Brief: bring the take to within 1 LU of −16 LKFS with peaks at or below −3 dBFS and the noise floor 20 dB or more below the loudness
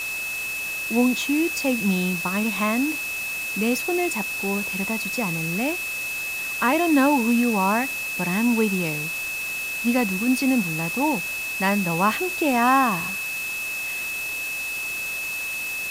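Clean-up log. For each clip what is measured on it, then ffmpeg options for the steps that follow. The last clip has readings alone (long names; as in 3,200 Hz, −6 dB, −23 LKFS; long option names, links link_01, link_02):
interfering tone 2,600 Hz; level of the tone −27 dBFS; background noise floor −29 dBFS; target noise floor −43 dBFS; integrated loudness −23.0 LKFS; sample peak −7.5 dBFS; target loudness −16.0 LKFS
→ -af "bandreject=frequency=2600:width=30"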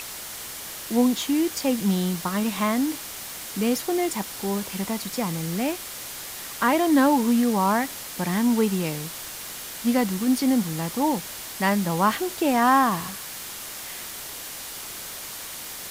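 interfering tone none found; background noise floor −37 dBFS; target noise floor −45 dBFS
→ -af "afftdn=noise_reduction=8:noise_floor=-37"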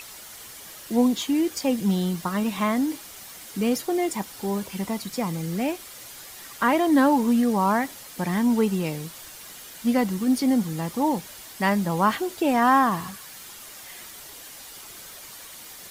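background noise floor −43 dBFS; target noise floor −44 dBFS
→ -af "afftdn=noise_reduction=6:noise_floor=-43"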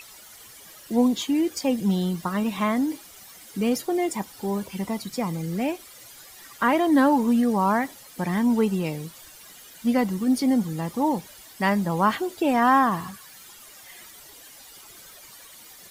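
background noise floor −47 dBFS; integrated loudness −24.0 LKFS; sample peak −8.5 dBFS; target loudness −16.0 LKFS
→ -af "volume=8dB,alimiter=limit=-3dB:level=0:latency=1"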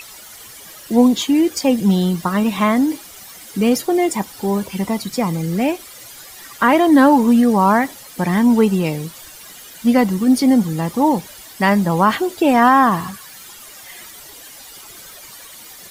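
integrated loudness −16.0 LKFS; sample peak −3.0 dBFS; background noise floor −39 dBFS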